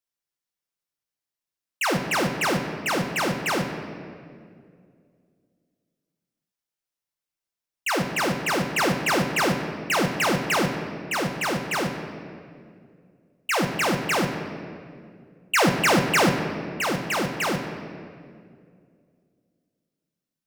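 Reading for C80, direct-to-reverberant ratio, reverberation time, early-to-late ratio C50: 7.5 dB, 3.5 dB, 2.3 s, 6.0 dB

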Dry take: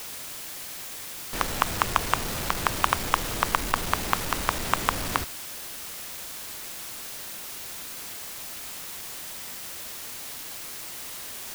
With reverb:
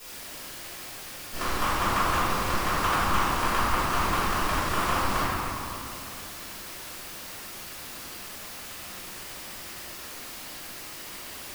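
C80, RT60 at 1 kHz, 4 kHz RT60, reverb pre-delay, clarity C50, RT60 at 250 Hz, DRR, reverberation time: -2.5 dB, 2.8 s, 1.5 s, 3 ms, -4.5 dB, 3.2 s, -15.5 dB, 2.8 s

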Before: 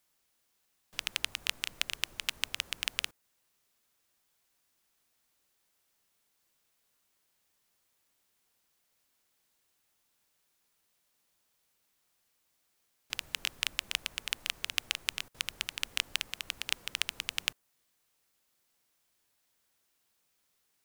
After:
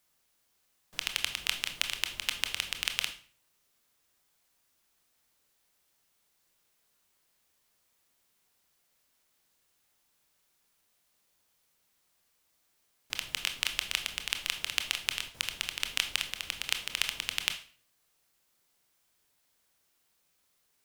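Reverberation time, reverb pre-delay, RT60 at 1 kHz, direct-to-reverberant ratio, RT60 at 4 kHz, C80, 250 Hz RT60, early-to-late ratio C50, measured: 0.45 s, 21 ms, 0.40 s, 6.5 dB, 0.40 s, 16.0 dB, 0.50 s, 11.0 dB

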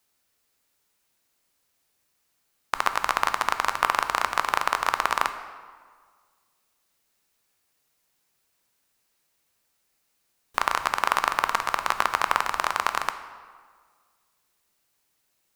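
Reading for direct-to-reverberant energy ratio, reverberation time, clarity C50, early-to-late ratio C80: 9.0 dB, 1.7 s, 10.5 dB, 12.0 dB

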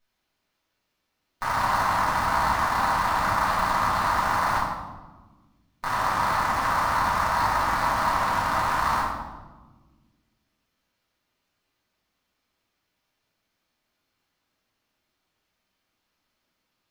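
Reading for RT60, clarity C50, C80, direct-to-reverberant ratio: 1.3 s, 1.0 dB, 3.5 dB, -10.0 dB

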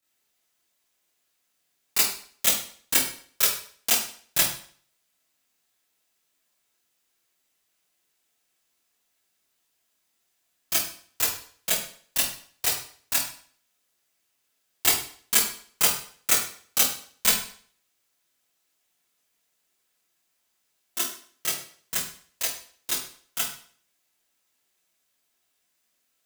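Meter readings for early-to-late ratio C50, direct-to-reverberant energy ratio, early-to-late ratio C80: 4.5 dB, -10.0 dB, 8.5 dB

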